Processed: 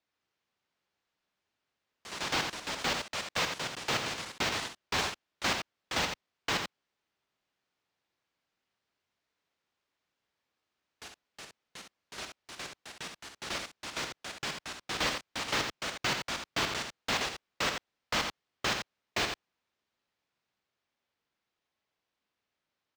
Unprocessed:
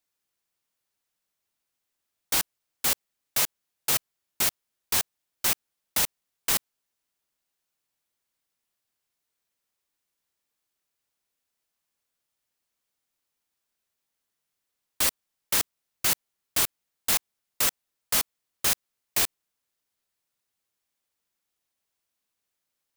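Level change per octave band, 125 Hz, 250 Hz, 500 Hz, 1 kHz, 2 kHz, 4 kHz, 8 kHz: +2.5, +3.5, +3.5, +3.0, +2.0, -1.0, -11.5 dB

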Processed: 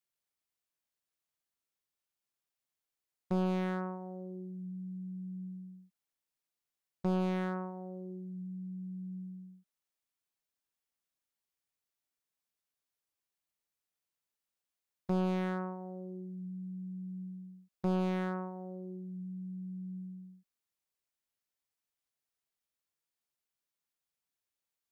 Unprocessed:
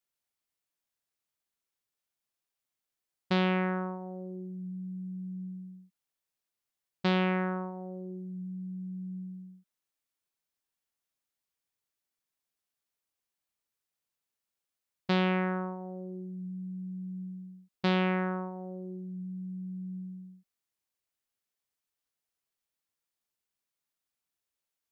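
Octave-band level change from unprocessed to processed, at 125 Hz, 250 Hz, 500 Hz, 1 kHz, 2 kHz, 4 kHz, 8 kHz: -3.0 dB, -3.0 dB, -4.0 dB, -6.0 dB, -11.5 dB, -14.5 dB, n/a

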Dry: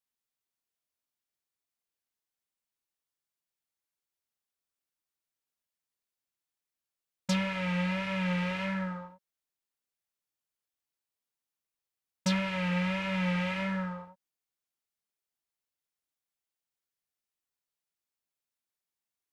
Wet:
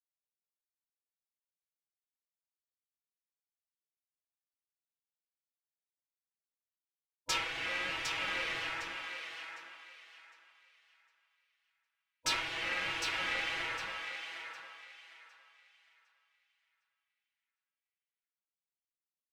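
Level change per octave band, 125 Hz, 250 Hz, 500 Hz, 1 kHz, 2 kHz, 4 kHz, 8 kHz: -23.0, -22.0, -9.5, -2.5, +1.0, +3.5, +4.0 dB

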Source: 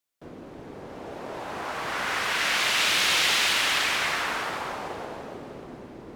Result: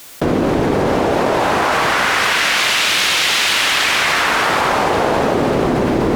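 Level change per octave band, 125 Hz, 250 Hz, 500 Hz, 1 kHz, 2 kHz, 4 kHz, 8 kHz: +21.5, +22.0, +19.5, +14.5, +10.5, +9.0, +9.0 dB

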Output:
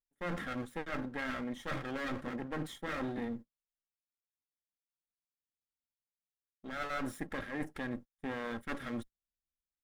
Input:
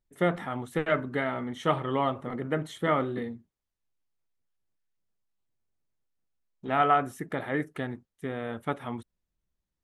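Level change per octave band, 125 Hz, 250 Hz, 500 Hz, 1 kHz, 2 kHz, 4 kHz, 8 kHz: -10.5 dB, -6.0 dB, -12.0 dB, -13.5 dB, -5.5 dB, -6.0 dB, n/a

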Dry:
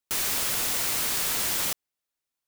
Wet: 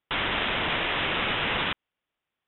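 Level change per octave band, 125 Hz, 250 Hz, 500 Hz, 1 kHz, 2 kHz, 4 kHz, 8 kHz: +7.5 dB, +7.5 dB, +7.5 dB, +7.5 dB, +8.0 dB, +3.0 dB, under -40 dB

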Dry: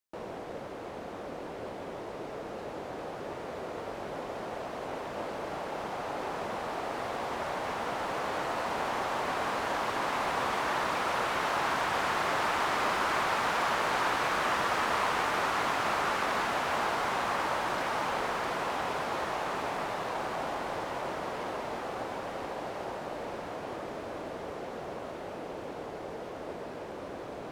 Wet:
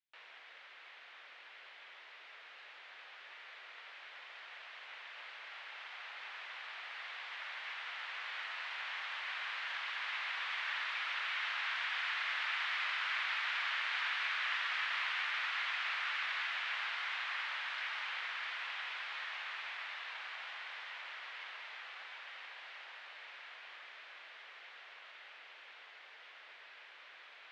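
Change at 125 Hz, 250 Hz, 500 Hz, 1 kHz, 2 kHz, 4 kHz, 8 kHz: under -40 dB, under -35 dB, -28.0 dB, -15.0 dB, -2.5 dB, -1.5 dB, under -15 dB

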